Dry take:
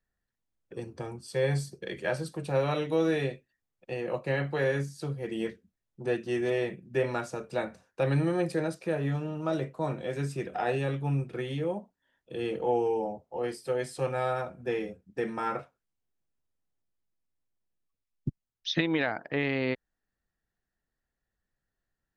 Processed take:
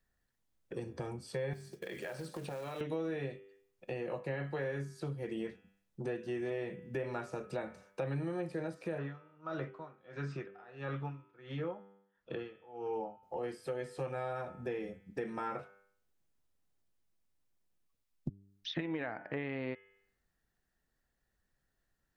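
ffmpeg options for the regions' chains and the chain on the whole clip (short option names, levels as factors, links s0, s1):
-filter_complex "[0:a]asettb=1/sr,asplit=3[s0][s1][s2];[s0]atrim=end=1.534[s3];[s1]atrim=start=1.53:end=2.81,asetpts=PTS-STARTPTS,afade=t=in:d=0.004:c=qsin,afade=t=out:st=1.276:d=0.004:c=qsin,highpass=f=220:p=1,acompressor=threshold=0.0126:ratio=8:attack=3.2:release=140:knee=1:detection=peak,acrusher=bits=4:mode=log:mix=0:aa=0.000001[s4];[s2]atrim=start=2.806[s5];[s3][s4]acrossfade=d=0.004:c1=hsin:c2=qsin[s6];[s6][s5]acrossfade=d=0.004:c1=qsin:c2=hsin,asettb=1/sr,asplit=3[s7][s8][s9];[s7]atrim=end=8.984[s10];[s8]atrim=start=8.98:end=13.23,asetpts=PTS-STARTPTS,afade=t=in:d=0.004:c=qsin,afade=t=out:st=4.246:d=0.004:c=qsin,lowpass=f=5600:w=0.5412,lowpass=f=5600:w=1.3066,equalizer=f=1300:w=1.7:g=12.5,aeval=exprs='val(0)*pow(10,-35*(0.5-0.5*cos(2*PI*1.5*n/s))/20)':c=same[s11];[s9]atrim=start=13.226[s12];[s10][s11]acrossfade=d=0.004:c1=hsin:c2=qsin[s13];[s13][s12]acrossfade=d=0.004:c1=qsin:c2=hsin,asettb=1/sr,asplit=3[s14][s15][s16];[s14]atrim=end=18.744[s17];[s15]atrim=start=18.74:end=19.37,asetpts=PTS-STARTPTS,afade=t=in:d=0.004:c=qsin,afade=t=out:st=0.626:d=0.004:c=qsin,adynamicsmooth=sensitivity=1:basefreq=4800,equalizer=f=3500:w=7:g=-6[s18];[s16]atrim=start=19.366[s19];[s17][s18]acrossfade=d=0.004:c1=hsin:c2=qsin[s20];[s20][s19]acrossfade=d=0.004:c1=qsin:c2=hsin,acrossover=split=2800[s21][s22];[s22]acompressor=threshold=0.002:ratio=4:attack=1:release=60[s23];[s21][s23]amix=inputs=2:normalize=0,bandreject=f=98.57:t=h:w=4,bandreject=f=197.14:t=h:w=4,bandreject=f=295.71:t=h:w=4,bandreject=f=394.28:t=h:w=4,bandreject=f=492.85:t=h:w=4,bandreject=f=591.42:t=h:w=4,bandreject=f=689.99:t=h:w=4,bandreject=f=788.56:t=h:w=4,bandreject=f=887.13:t=h:w=4,bandreject=f=985.7:t=h:w=4,bandreject=f=1084.27:t=h:w=4,bandreject=f=1182.84:t=h:w=4,bandreject=f=1281.41:t=h:w=4,bandreject=f=1379.98:t=h:w=4,bandreject=f=1478.55:t=h:w=4,bandreject=f=1577.12:t=h:w=4,bandreject=f=1675.69:t=h:w=4,bandreject=f=1774.26:t=h:w=4,bandreject=f=1872.83:t=h:w=4,bandreject=f=1971.4:t=h:w=4,bandreject=f=2069.97:t=h:w=4,bandreject=f=2168.54:t=h:w=4,bandreject=f=2267.11:t=h:w=4,bandreject=f=2365.68:t=h:w=4,bandreject=f=2464.25:t=h:w=4,bandreject=f=2562.82:t=h:w=4,bandreject=f=2661.39:t=h:w=4,bandreject=f=2759.96:t=h:w=4,bandreject=f=2858.53:t=h:w=4,bandreject=f=2957.1:t=h:w=4,bandreject=f=3055.67:t=h:w=4,bandreject=f=3154.24:t=h:w=4,bandreject=f=3252.81:t=h:w=4,bandreject=f=3351.38:t=h:w=4,bandreject=f=3449.95:t=h:w=4,acompressor=threshold=0.00708:ratio=3,volume=1.58"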